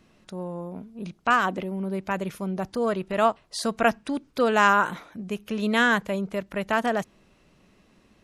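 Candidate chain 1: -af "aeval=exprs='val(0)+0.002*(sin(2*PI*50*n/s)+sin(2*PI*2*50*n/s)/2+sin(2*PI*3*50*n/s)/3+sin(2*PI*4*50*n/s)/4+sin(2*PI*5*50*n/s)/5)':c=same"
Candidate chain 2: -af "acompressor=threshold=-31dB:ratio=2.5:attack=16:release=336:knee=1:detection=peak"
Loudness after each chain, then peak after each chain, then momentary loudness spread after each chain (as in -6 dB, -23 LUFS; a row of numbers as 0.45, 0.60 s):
-25.5, -33.0 LUFS; -5.5, -14.5 dBFS; 16, 8 LU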